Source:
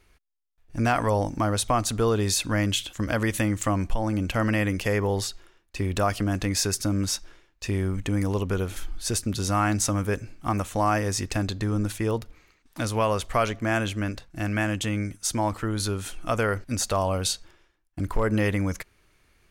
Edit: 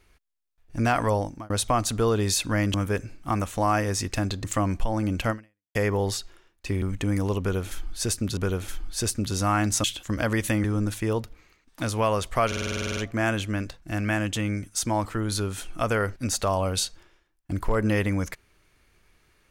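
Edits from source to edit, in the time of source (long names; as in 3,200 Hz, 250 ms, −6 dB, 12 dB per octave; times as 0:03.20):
0:01.12–0:01.50: fade out
0:02.74–0:03.54: swap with 0:09.92–0:11.62
0:04.40–0:04.85: fade out exponential
0:05.92–0:07.87: remove
0:08.45–0:09.42: repeat, 2 plays
0:13.45: stutter 0.05 s, 11 plays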